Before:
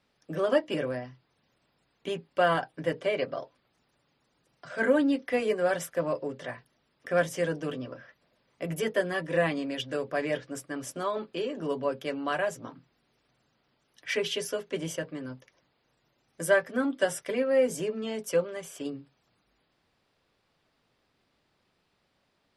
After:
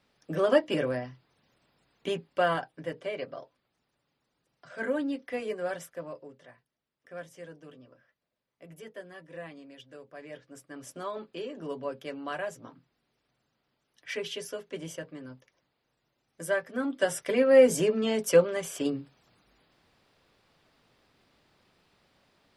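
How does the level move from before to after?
0:02.09 +2 dB
0:02.88 −6.5 dB
0:05.69 −6.5 dB
0:06.53 −16.5 dB
0:10.15 −16.5 dB
0:10.96 −5.5 dB
0:16.61 −5.5 dB
0:17.56 +6 dB

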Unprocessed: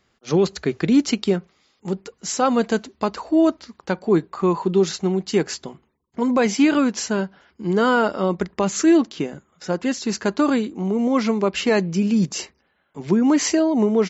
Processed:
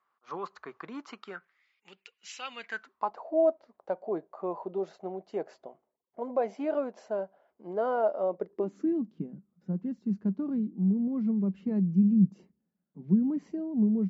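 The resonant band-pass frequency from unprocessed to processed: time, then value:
resonant band-pass, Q 5.1
0:01.11 1,100 Hz
0:01.91 2,700 Hz
0:02.54 2,700 Hz
0:03.22 630 Hz
0:08.30 630 Hz
0:08.95 190 Hz

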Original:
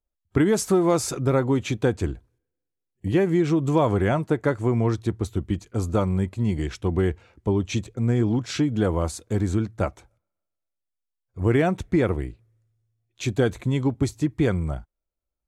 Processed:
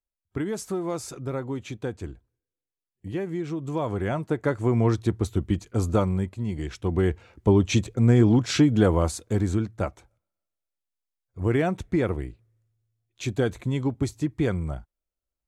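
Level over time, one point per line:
0:03.59 −9.5 dB
0:04.86 +1 dB
0:05.92 +1 dB
0:06.46 −6 dB
0:07.48 +4 dB
0:08.66 +4 dB
0:09.85 −3 dB

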